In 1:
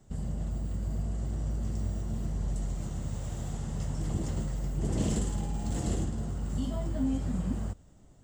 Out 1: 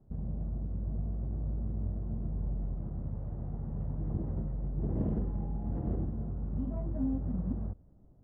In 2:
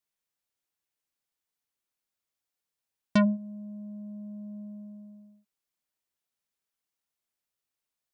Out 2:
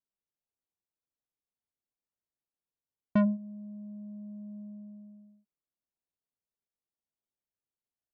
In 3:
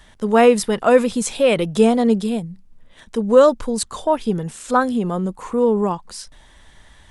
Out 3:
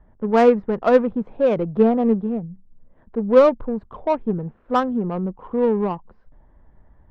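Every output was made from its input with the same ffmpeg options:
ffmpeg -i in.wav -af "lowpass=1700,adynamicsmooth=sensitivity=0.5:basefreq=880,aeval=exprs='0.841*(cos(1*acos(clip(val(0)/0.841,-1,1)))-cos(1*PI/2))+0.0596*(cos(3*acos(clip(val(0)/0.841,-1,1)))-cos(3*PI/2))':channel_layout=same" out.wav

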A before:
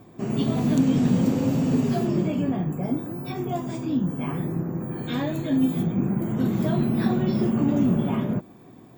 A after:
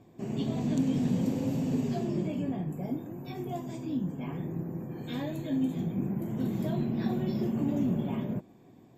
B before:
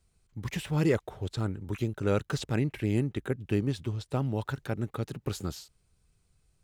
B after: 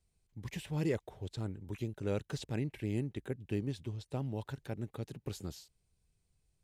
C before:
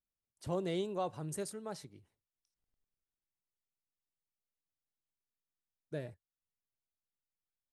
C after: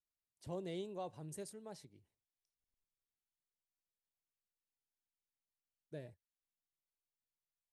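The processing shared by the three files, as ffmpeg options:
ffmpeg -i in.wav -af "equalizer=frequency=1300:width_type=o:width=0.5:gain=-7.5,volume=-7.5dB" -ar 32000 -c:a ac3 -b:a 96k out.ac3

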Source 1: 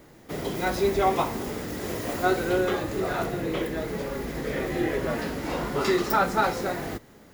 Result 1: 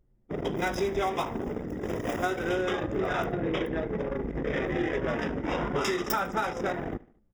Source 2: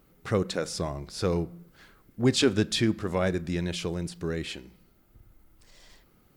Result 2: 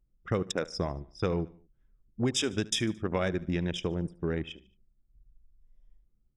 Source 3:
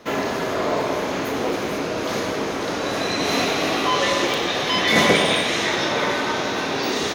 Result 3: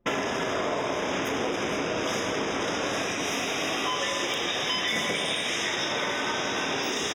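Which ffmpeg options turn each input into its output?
ffmpeg -i in.wav -filter_complex "[0:a]anlmdn=39.8,equalizer=frequency=5300:width=0.4:gain=7.5,acompressor=threshold=-26dB:ratio=12,asuperstop=centerf=4300:order=12:qfactor=4,asplit=2[link_01][link_02];[link_02]aecho=0:1:74|148|222:0.0891|0.0428|0.0205[link_03];[link_01][link_03]amix=inputs=2:normalize=0,volume=1.5dB" out.wav

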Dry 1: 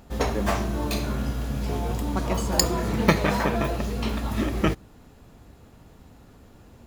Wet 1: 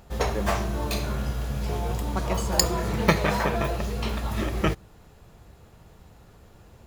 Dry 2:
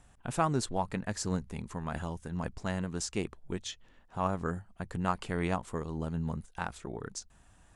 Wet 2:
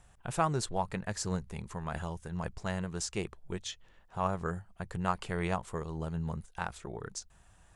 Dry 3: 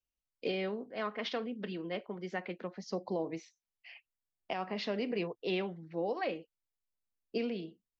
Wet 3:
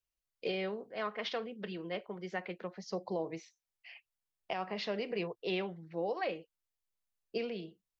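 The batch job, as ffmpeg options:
ffmpeg -i in.wav -af "equalizer=frequency=260:width=3.7:gain=-11" out.wav

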